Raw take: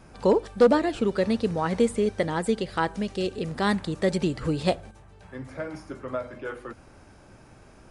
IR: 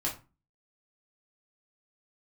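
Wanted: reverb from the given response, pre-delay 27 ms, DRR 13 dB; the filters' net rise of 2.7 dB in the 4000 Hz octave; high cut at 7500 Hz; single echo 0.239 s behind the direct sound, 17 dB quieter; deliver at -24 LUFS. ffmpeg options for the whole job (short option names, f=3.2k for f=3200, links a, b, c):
-filter_complex "[0:a]lowpass=7.5k,equalizer=f=4k:t=o:g=3.5,aecho=1:1:239:0.141,asplit=2[a][b];[1:a]atrim=start_sample=2205,adelay=27[c];[b][c]afir=irnorm=-1:irlink=0,volume=-18dB[d];[a][d]amix=inputs=2:normalize=0,volume=1.5dB"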